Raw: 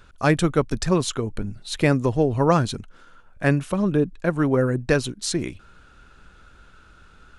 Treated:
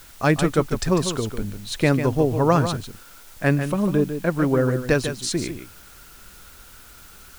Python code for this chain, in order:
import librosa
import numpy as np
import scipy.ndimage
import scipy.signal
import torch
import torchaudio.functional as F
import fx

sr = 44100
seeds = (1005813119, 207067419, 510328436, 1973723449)

y = x + 10.0 ** (-9.0 / 20.0) * np.pad(x, (int(148 * sr / 1000.0), 0))[:len(x)]
y = fx.quant_dither(y, sr, seeds[0], bits=8, dither='triangular')